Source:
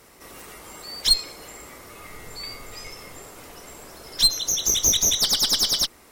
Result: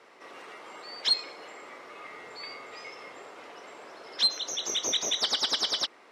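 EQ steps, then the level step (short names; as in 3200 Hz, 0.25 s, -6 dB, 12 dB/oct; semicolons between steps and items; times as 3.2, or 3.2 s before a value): BPF 390–3200 Hz; 0.0 dB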